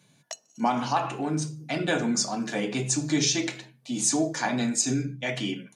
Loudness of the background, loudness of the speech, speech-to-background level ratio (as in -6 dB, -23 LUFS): -42.0 LUFS, -27.0 LUFS, 15.0 dB